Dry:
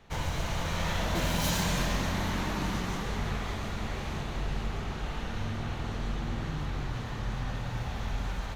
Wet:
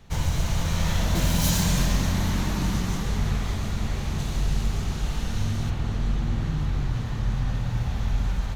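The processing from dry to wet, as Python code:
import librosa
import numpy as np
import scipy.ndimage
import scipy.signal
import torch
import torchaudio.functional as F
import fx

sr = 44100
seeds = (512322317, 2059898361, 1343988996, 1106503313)

y = fx.bass_treble(x, sr, bass_db=9, treble_db=fx.steps((0.0, 8.0), (4.18, 14.0), (5.69, 4.0)))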